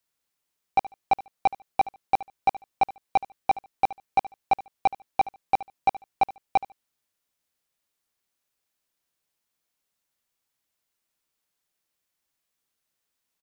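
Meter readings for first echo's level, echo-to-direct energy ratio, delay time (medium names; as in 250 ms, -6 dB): -17.0 dB, -17.0 dB, 73 ms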